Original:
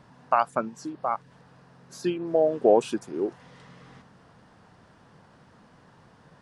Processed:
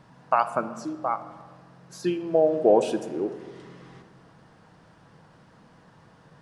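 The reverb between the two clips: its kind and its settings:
rectangular room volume 1,800 cubic metres, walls mixed, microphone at 0.62 metres

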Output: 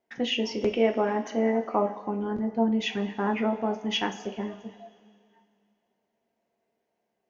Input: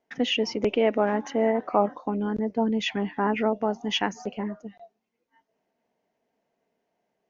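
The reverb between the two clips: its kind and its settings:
coupled-rooms reverb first 0.29 s, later 2.5 s, from −18 dB, DRR 4.5 dB
level −3.5 dB

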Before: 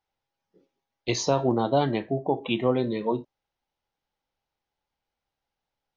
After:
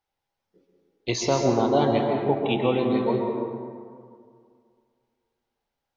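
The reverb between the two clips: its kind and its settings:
dense smooth reverb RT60 2.2 s, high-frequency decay 0.45×, pre-delay 115 ms, DRR 1.5 dB

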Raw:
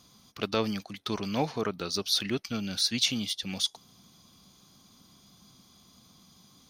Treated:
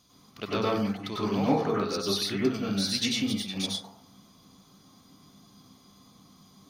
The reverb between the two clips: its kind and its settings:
dense smooth reverb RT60 0.57 s, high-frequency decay 0.3×, pre-delay 85 ms, DRR −7 dB
level −5 dB

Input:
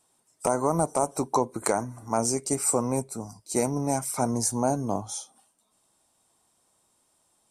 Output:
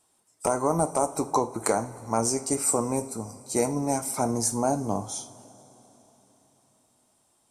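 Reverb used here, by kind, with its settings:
coupled-rooms reverb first 0.36 s, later 4.1 s, from −18 dB, DRR 9 dB

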